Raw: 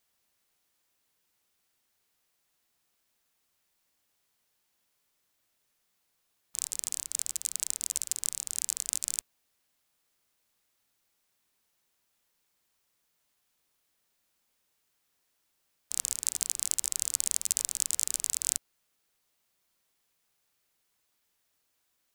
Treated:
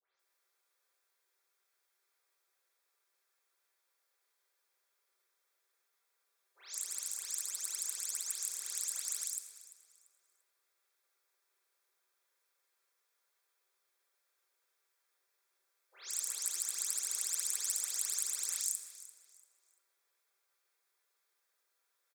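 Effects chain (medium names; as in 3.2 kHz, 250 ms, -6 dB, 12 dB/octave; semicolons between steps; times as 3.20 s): delay that grows with frequency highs late, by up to 194 ms; rippled Chebyshev high-pass 360 Hz, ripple 6 dB; band-stop 2.9 kHz, Q 7.1; feedback delay 342 ms, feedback 28%, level -17 dB; reverberation RT60 1.9 s, pre-delay 5 ms, DRR 4.5 dB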